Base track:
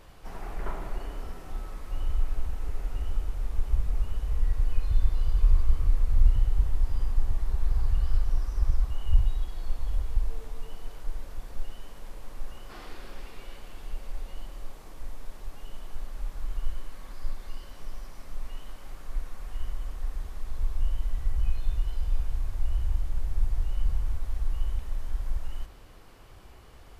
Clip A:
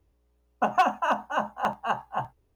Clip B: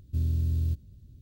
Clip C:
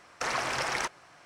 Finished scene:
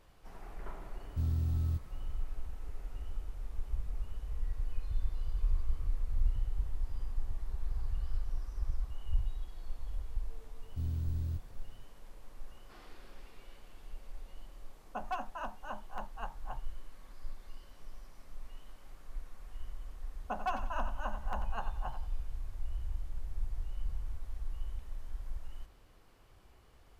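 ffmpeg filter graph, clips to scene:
-filter_complex "[2:a]asplit=2[a][b];[1:a]asplit=2[c][d];[0:a]volume=-10.5dB[e];[d]aecho=1:1:91|182|273:0.335|0.104|0.0322[f];[a]atrim=end=1.21,asetpts=PTS-STARTPTS,volume=-5dB,afade=t=in:d=0.004:c=hsin,afade=t=out:st=1.206:d=0.004:c=hsin,adelay=1030[g];[b]atrim=end=1.21,asetpts=PTS-STARTPTS,volume=-8.5dB,afade=t=in:d=0.004:c=hsin,afade=t=out:st=1.206:d=0.004:c=hsin,adelay=10630[h];[c]atrim=end=2.55,asetpts=PTS-STARTPTS,volume=-16dB,afade=t=in:d=0.004:c=hsin,afade=t=out:st=2.546:d=0.004:c=hsin,adelay=14330[i];[f]atrim=end=2.55,asetpts=PTS-STARTPTS,volume=-13.5dB,afade=t=in:d=0.004:c=hsin,afade=t=out:st=2.546:d=0.004:c=hsin,adelay=19680[j];[e][g][h][i][j]amix=inputs=5:normalize=0"

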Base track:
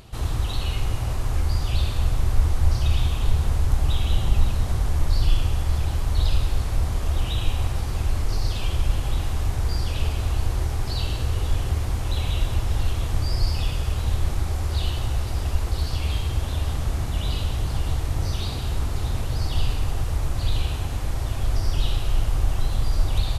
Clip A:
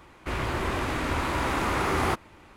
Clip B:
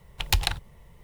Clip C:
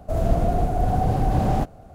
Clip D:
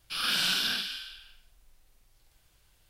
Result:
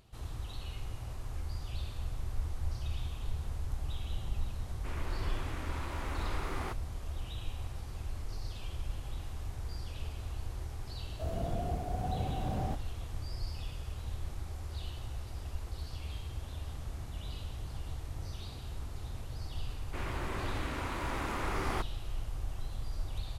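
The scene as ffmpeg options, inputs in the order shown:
-filter_complex "[1:a]asplit=2[a][b];[0:a]volume=-16dB[c];[3:a]highpass=41[d];[a]atrim=end=2.56,asetpts=PTS-STARTPTS,volume=-14.5dB,afade=t=in:d=0.004:c=hsin,afade=t=out:st=2.556:d=0.004:c=hsin,adelay=4580[e];[d]atrim=end=1.94,asetpts=PTS-STARTPTS,volume=-14dB,afade=t=in:d=0.004:c=hsin,afade=t=out:st=1.936:d=0.004:c=hsin,adelay=11110[f];[b]atrim=end=2.56,asetpts=PTS-STARTPTS,volume=-10dB,afade=t=in:d=0.004:c=hsin,afade=t=out:st=2.556:d=0.004:c=hsin,adelay=19670[g];[c][e][f][g]amix=inputs=4:normalize=0"

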